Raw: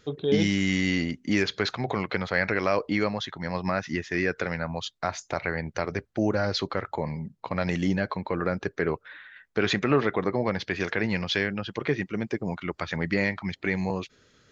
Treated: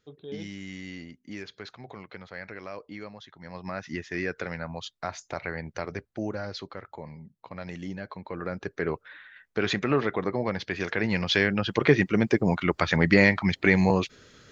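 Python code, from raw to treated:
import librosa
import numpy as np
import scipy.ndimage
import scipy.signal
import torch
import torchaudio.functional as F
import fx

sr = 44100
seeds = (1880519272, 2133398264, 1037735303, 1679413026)

y = fx.gain(x, sr, db=fx.line((3.24, -15.0), (3.95, -4.5), (5.93, -4.5), (6.74, -11.0), (7.96, -11.0), (8.89, -2.0), (10.82, -2.0), (11.79, 7.0)))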